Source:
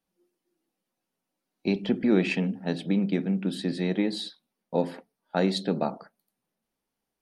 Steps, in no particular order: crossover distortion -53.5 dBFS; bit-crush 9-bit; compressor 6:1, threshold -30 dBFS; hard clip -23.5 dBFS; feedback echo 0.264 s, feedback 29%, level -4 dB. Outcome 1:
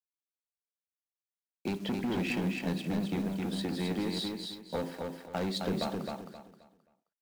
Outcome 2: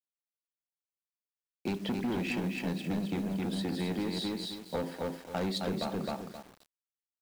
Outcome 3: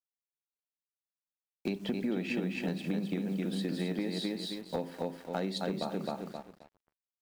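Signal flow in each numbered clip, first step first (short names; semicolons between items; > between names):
hard clip > compressor > bit-crush > crossover distortion > feedback echo; hard clip > feedback echo > crossover distortion > compressor > bit-crush; bit-crush > feedback echo > crossover distortion > compressor > hard clip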